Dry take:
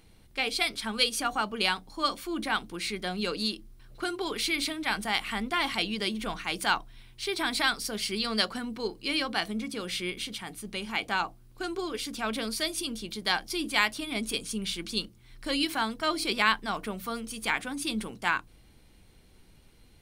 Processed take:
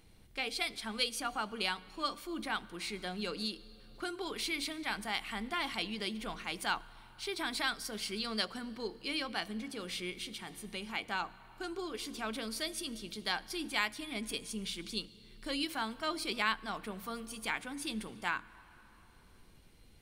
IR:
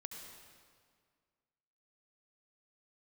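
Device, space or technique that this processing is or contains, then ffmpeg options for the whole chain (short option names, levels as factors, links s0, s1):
ducked reverb: -filter_complex "[0:a]asplit=3[s0][s1][s2];[1:a]atrim=start_sample=2205[s3];[s1][s3]afir=irnorm=-1:irlink=0[s4];[s2]apad=whole_len=882624[s5];[s4][s5]sidechaincompress=threshold=0.00891:ratio=4:attack=16:release=696,volume=1.41[s6];[s0][s6]amix=inputs=2:normalize=0,volume=0.376"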